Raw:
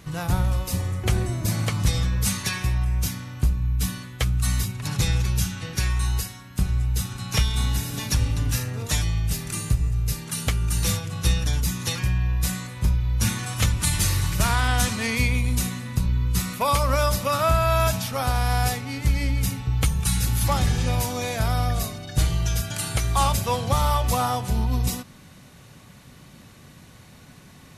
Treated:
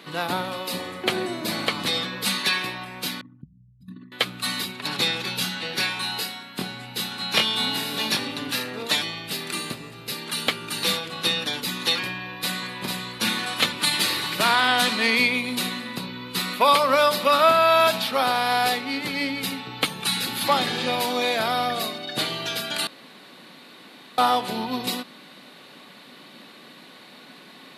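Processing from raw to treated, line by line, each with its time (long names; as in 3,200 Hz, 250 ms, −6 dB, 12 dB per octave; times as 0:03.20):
0:03.21–0:04.12: spectral envelope exaggerated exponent 3
0:05.24–0:08.27: double-tracking delay 23 ms −4 dB
0:12.17–0:12.73: delay throw 450 ms, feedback 25%, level −4 dB
0:22.87–0:24.18: fill with room tone
whole clip: high-pass filter 240 Hz 24 dB per octave; high shelf with overshoot 5,000 Hz −6.5 dB, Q 3; level +5 dB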